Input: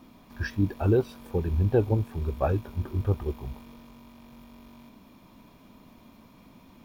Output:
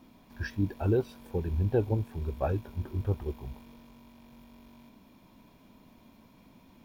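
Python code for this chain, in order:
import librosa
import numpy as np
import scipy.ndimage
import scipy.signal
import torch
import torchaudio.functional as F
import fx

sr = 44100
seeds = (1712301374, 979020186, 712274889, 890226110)

y = fx.notch(x, sr, hz=1200.0, q=9.9)
y = y * librosa.db_to_amplitude(-4.0)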